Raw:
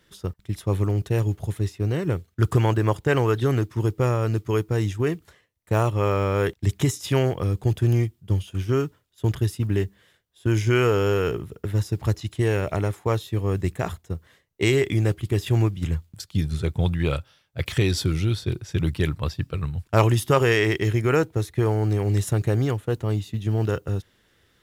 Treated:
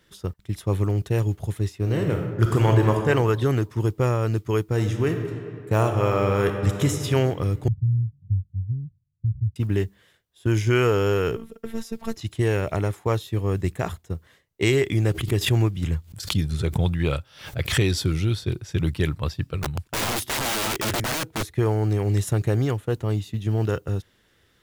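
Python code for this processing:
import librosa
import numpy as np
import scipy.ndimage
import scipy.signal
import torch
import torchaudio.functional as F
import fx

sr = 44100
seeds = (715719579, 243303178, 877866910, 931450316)

y = fx.reverb_throw(x, sr, start_s=1.76, length_s=1.31, rt60_s=1.3, drr_db=2.0)
y = fx.reverb_throw(y, sr, start_s=4.64, length_s=2.36, rt60_s=2.5, drr_db=5.0)
y = fx.cheby2_lowpass(y, sr, hz=850.0, order=4, stop_db=80, at=(7.68, 9.56))
y = fx.robotise(y, sr, hz=226.0, at=(11.36, 12.17))
y = fx.pre_swell(y, sr, db_per_s=110.0, at=(14.97, 17.97))
y = fx.overflow_wrap(y, sr, gain_db=21.0, at=(19.62, 21.5), fade=0.02)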